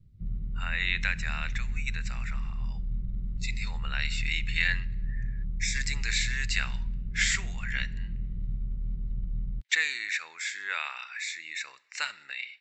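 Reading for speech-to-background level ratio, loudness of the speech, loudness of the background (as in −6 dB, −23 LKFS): 5.0 dB, −31.5 LKFS, −36.5 LKFS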